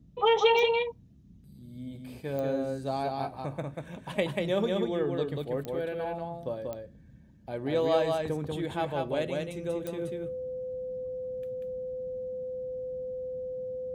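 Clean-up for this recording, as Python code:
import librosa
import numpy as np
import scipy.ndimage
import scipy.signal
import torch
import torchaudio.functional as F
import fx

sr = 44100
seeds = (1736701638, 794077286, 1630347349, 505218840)

y = fx.fix_declick_ar(x, sr, threshold=10.0)
y = fx.notch(y, sr, hz=510.0, q=30.0)
y = fx.noise_reduce(y, sr, print_start_s=0.94, print_end_s=1.44, reduce_db=25.0)
y = fx.fix_echo_inverse(y, sr, delay_ms=189, level_db=-3.0)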